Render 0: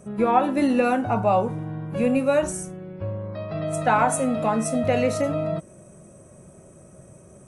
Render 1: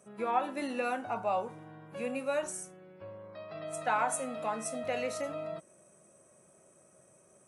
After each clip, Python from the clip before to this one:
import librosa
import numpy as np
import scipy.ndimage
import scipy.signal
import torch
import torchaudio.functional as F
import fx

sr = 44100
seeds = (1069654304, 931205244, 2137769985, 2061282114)

y = fx.highpass(x, sr, hz=760.0, slope=6)
y = y * 10.0 ** (-7.5 / 20.0)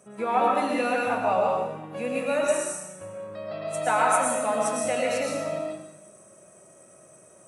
y = fx.rev_freeverb(x, sr, rt60_s=0.94, hf_ratio=1.0, predelay_ms=75, drr_db=-2.0)
y = y * 10.0 ** (5.0 / 20.0)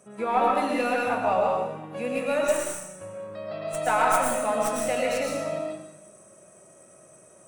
y = fx.tracing_dist(x, sr, depth_ms=0.065)